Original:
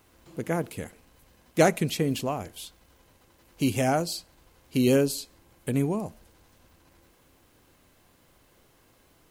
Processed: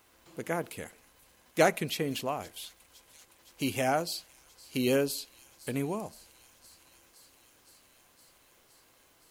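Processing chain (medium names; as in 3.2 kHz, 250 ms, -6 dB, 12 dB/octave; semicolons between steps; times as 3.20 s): bass shelf 380 Hz -10.5 dB; feedback echo behind a high-pass 515 ms, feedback 80%, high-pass 3.8 kHz, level -20 dB; dynamic bell 7.4 kHz, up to -5 dB, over -48 dBFS, Q 1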